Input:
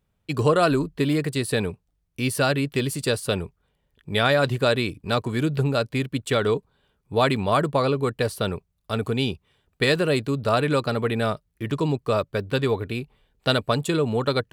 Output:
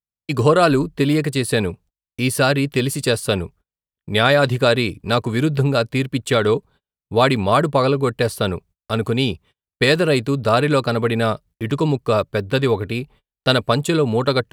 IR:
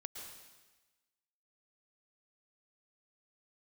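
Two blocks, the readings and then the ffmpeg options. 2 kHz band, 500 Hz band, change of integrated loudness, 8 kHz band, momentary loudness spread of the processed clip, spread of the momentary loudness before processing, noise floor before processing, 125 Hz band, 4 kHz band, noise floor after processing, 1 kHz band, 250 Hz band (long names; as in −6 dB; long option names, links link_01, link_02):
+5.0 dB, +5.0 dB, +5.0 dB, +5.0 dB, 8 LU, 8 LU, −73 dBFS, +5.0 dB, +5.0 dB, below −85 dBFS, +5.0 dB, +5.0 dB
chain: -af "agate=range=-34dB:threshold=-49dB:ratio=16:detection=peak,volume=5dB"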